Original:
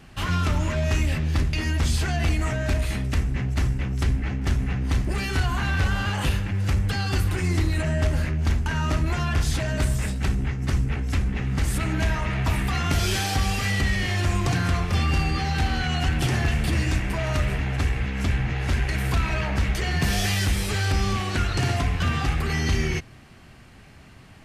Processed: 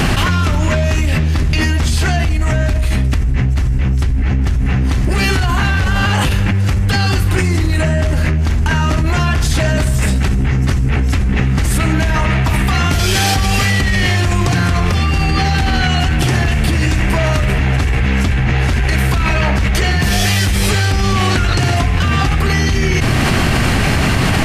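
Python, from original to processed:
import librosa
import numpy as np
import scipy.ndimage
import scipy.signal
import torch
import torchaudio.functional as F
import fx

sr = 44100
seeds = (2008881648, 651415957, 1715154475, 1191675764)

y = fx.low_shelf(x, sr, hz=81.0, db=9.0, at=(2.24, 4.66))
y = fx.env_flatten(y, sr, amount_pct=100)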